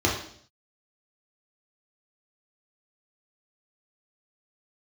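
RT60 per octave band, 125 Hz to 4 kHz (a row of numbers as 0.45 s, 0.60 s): 0.70 s, 0.70 s, 0.65 s, 0.55 s, 0.55 s, 0.65 s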